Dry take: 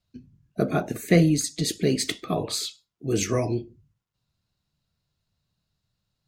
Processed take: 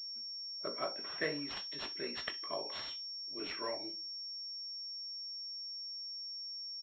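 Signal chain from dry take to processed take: high-pass 790 Hz 12 dB/octave; early reflections 19 ms -7.5 dB, 57 ms -16 dB; speed mistake 48 kHz file played as 44.1 kHz; class-D stage that switches slowly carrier 5.5 kHz; trim -8 dB

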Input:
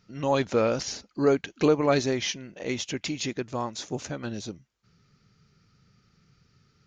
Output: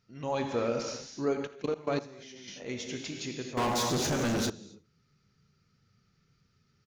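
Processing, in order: gated-style reverb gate 300 ms flat, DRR 2.5 dB; 1.47–2.48 s: level held to a coarse grid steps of 20 dB; delay 82 ms -20 dB; 3.57–4.50 s: waveshaping leveller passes 5; trim -8.5 dB

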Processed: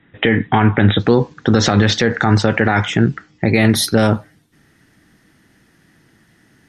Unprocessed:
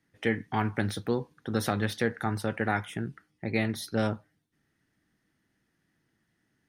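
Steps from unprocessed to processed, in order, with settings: brick-wall FIR low-pass 3.9 kHz, from 0.99 s 8.1 kHz, from 3.53 s 14 kHz; loudness maximiser +22 dB; trim -1 dB

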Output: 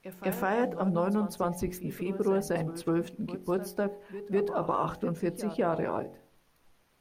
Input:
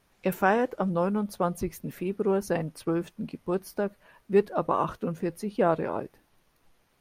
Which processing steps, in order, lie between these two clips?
de-hum 45.3 Hz, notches 19; peak limiter -18 dBFS, peak gain reduction 8.5 dB; pre-echo 202 ms -13 dB

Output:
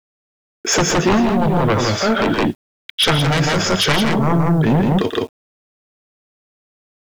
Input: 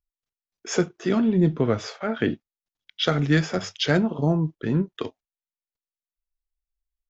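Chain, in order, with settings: sine folder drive 12 dB, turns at -7.5 dBFS; on a send: loudspeakers at several distances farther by 41 m -11 dB, 57 m -3 dB; on the sum: peak limiter -9.5 dBFS, peak gain reduction 8 dB; word length cut 8-bit, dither none

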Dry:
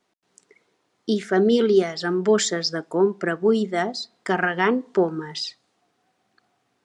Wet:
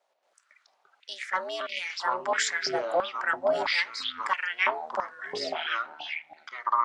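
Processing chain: ring modulator 180 Hz; ever faster or slower copies 89 ms, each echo -7 st, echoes 2; step-sequenced high-pass 3 Hz 640–2400 Hz; trim -3.5 dB

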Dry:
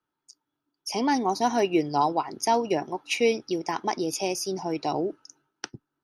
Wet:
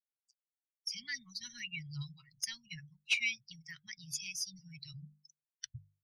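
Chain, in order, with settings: expander on every frequency bin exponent 2; Chebyshev band-stop 140–2000 Hz, order 4; hum notches 50/100/150/200 Hz; saturation -20 dBFS, distortion -21 dB; treble shelf 5.8 kHz -11.5 dB; trim +4 dB

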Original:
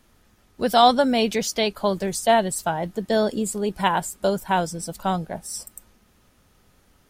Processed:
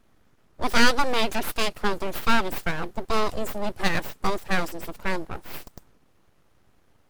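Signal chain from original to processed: full-wave rectifier; tape noise reduction on one side only decoder only

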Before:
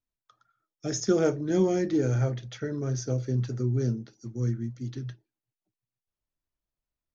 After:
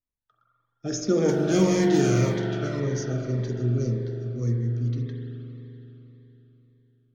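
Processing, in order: 1.28–2.79 s: formants flattened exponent 0.6; level rider gain up to 4 dB; level-controlled noise filter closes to 2.1 kHz, open at -18.5 dBFS; spring tank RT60 3.7 s, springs 42 ms, chirp 40 ms, DRR 0 dB; Shepard-style phaser falling 1.8 Hz; trim -2.5 dB

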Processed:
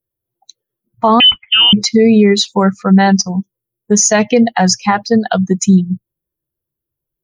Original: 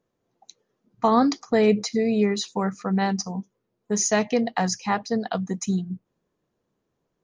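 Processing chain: expander on every frequency bin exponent 1.5; 1.20–1.73 s: frequency inversion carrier 3.3 kHz; loudness maximiser +19 dB; trim -1 dB

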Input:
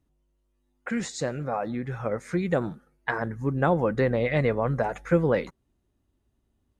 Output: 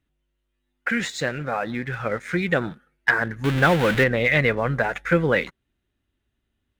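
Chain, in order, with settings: 3.44–4.04 s: jump at every zero crossing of -26.5 dBFS; high-order bell 2.3 kHz +10.5 dB; waveshaping leveller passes 1; trim -2 dB

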